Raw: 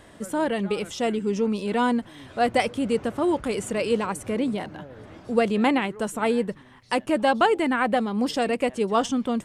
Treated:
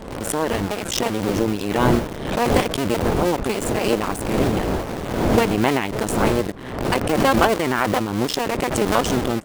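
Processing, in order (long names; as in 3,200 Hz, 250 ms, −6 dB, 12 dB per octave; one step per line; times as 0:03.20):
sub-harmonics by changed cycles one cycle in 2, muted
wind on the microphone 480 Hz −32 dBFS
in parallel at −3.5 dB: bit reduction 5 bits
on the sum: background raised ahead of every attack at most 54 dB per second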